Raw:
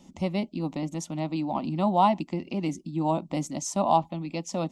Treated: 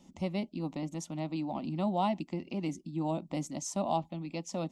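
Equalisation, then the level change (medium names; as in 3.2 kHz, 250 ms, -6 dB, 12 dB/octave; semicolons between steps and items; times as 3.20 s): dynamic bell 1 kHz, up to -7 dB, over -36 dBFS, Q 1.8; -5.5 dB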